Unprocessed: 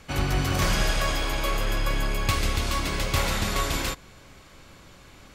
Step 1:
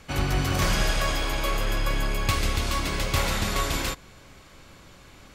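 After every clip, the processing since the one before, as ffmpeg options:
-af anull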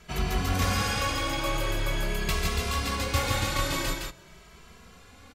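-filter_complex "[0:a]aecho=1:1:163:0.631,asplit=2[a][b];[b]adelay=2.6,afreqshift=0.45[c];[a][c]amix=inputs=2:normalize=1"

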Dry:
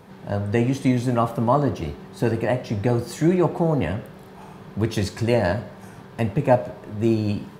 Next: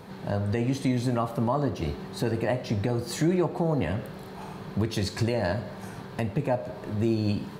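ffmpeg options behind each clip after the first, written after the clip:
-filter_complex "[0:a]equalizer=f=4.2k:t=o:w=0.24:g=6,asplit=2[a][b];[b]acompressor=threshold=-28dB:ratio=6,volume=-1dB[c];[a][c]amix=inputs=2:normalize=0,alimiter=limit=-11.5dB:level=0:latency=1:release=232,volume=-3.5dB"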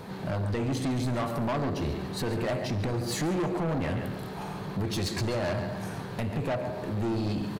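-af "aecho=1:1:140|280|420|560:0.266|0.0958|0.0345|0.0124,asoftclip=type=tanh:threshold=-29dB,volume=3.5dB"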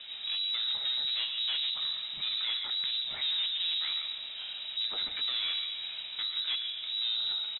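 -af "lowpass=f=3.4k:t=q:w=0.5098,lowpass=f=3.4k:t=q:w=0.6013,lowpass=f=3.4k:t=q:w=0.9,lowpass=f=3.4k:t=q:w=2.563,afreqshift=-4000,volume=-3.5dB"

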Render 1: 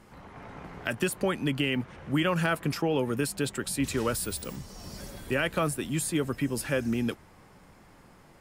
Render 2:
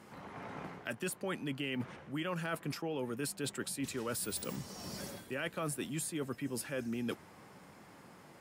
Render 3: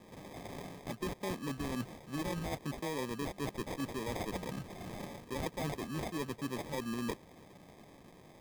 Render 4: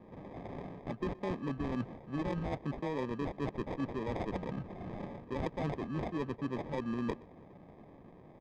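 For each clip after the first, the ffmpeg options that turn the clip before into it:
-af "highpass=130,areverse,acompressor=threshold=-35dB:ratio=6,areverse"
-af "acrusher=samples=31:mix=1:aa=0.000001"
-filter_complex "[0:a]adynamicsmooth=sensitivity=2:basefreq=1.5k,asplit=2[a][b];[b]adelay=122.4,volume=-23dB,highshelf=f=4k:g=-2.76[c];[a][c]amix=inputs=2:normalize=0,volume=2.5dB"

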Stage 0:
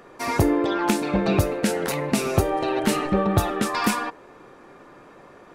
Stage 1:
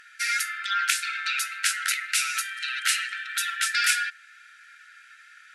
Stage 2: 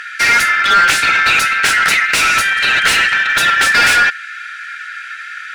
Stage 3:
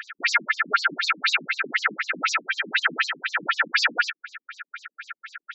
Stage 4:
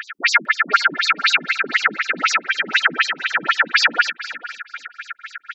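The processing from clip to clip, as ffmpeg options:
-af "afftfilt=real='re*between(b*sr/4096,1300,12000)':imag='im*between(b*sr/4096,1300,12000)':win_size=4096:overlap=0.75,volume=6dB"
-filter_complex "[0:a]acontrast=47,asplit=2[a][b];[b]highpass=f=720:p=1,volume=24dB,asoftclip=type=tanh:threshold=-1.5dB[c];[a][c]amix=inputs=2:normalize=0,lowpass=f=2.1k:p=1,volume=-6dB,volume=1.5dB"
-af "afftfilt=real='re*between(b*sr/1024,220*pow(5700/220,0.5+0.5*sin(2*PI*4*pts/sr))/1.41,220*pow(5700/220,0.5+0.5*sin(2*PI*4*pts/sr))*1.41)':imag='im*between(b*sr/1024,220*pow(5700/220,0.5+0.5*sin(2*PI*4*pts/sr))/1.41,220*pow(5700/220,0.5+0.5*sin(2*PI*4*pts/sr))*1.41)':win_size=1024:overlap=0.75,volume=-3.5dB"
-af "aecho=1:1:452|904:0.15|0.0239,volume=6dB"

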